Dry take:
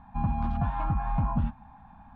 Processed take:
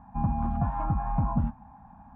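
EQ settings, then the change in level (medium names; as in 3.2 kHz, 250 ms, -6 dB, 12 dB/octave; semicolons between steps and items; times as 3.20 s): band-pass filter 1 kHz, Q 0.52; tilt EQ -4.5 dB/octave; 0.0 dB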